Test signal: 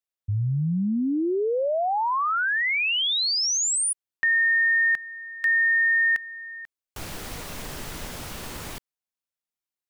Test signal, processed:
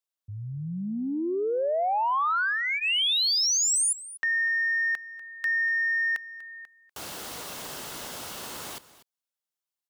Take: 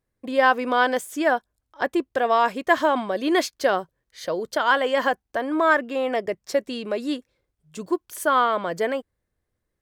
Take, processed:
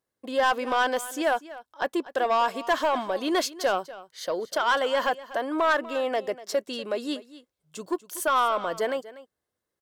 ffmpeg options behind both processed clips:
-filter_complex "[0:a]highpass=f=470:p=1,equalizer=f=1.9k:t=o:w=0.43:g=-5,bandreject=f=2.4k:w=13,aeval=exprs='0.447*(cos(1*acos(clip(val(0)/0.447,-1,1)))-cos(1*PI/2))+0.00891*(cos(5*acos(clip(val(0)/0.447,-1,1)))-cos(5*PI/2))':c=same,asoftclip=type=tanh:threshold=-15.5dB,asplit=2[a][b];[b]aecho=0:1:243:0.141[c];[a][c]amix=inputs=2:normalize=0"

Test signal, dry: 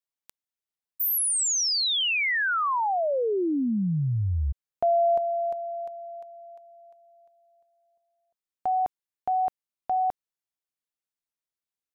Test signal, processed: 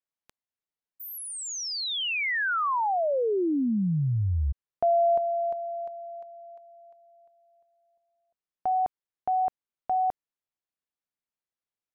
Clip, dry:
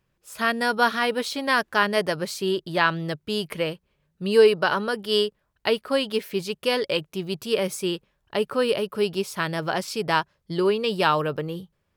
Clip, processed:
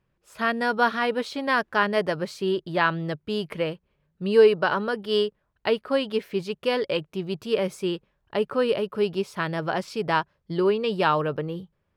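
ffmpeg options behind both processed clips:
-af "lowpass=f=2.3k:p=1"

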